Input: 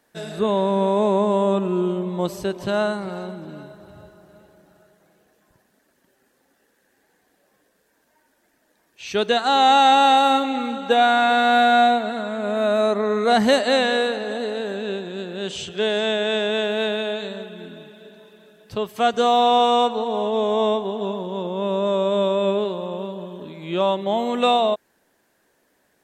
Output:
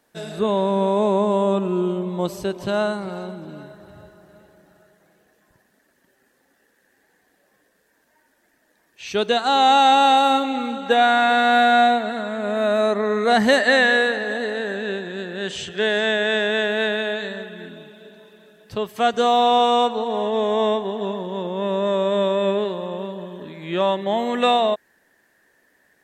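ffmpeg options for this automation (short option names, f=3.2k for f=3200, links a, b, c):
-af "asetnsamples=n=441:p=0,asendcmd='3.61 equalizer g 6;9.09 equalizer g -2.5;10.86 equalizer g 6.5;13.56 equalizer g 13.5;17.69 equalizer g 4;20.1 equalizer g 13',equalizer=f=1.8k:t=o:w=0.28:g=-2"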